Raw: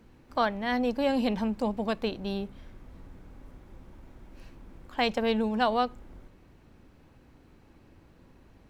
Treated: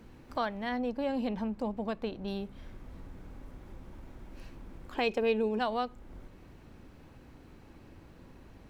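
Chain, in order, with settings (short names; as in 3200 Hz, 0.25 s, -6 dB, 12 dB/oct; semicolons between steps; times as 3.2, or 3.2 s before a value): 0.69–2.28 high shelf 2700 Hz -8 dB; 4.95–5.59 small resonant body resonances 390/2500 Hz, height 16 dB; compressor 1.5:1, threshold -49 dBFS, peak gain reduction 12 dB; gain +3.5 dB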